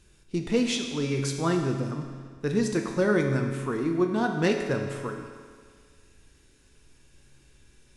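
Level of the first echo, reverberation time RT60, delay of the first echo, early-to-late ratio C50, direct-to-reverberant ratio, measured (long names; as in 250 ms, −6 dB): no echo audible, 1.8 s, no echo audible, 5.0 dB, 3.0 dB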